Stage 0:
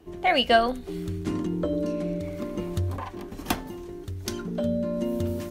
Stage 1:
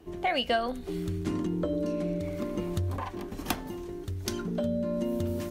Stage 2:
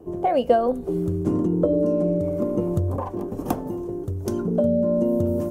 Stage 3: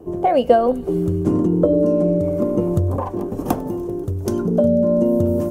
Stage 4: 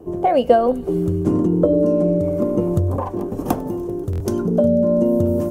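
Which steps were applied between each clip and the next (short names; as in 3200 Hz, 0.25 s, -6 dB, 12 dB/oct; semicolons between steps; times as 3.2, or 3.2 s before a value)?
compressor 2.5:1, threshold -27 dBFS, peak gain reduction 9.5 dB
ten-band EQ 125 Hz +10 dB, 250 Hz +4 dB, 500 Hz +12 dB, 1000 Hz +4 dB, 2000 Hz -9 dB, 4000 Hz -11 dB
thin delay 98 ms, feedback 84%, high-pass 2200 Hz, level -23 dB; gain +4.5 dB
stuck buffer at 4.11, samples 1024, times 3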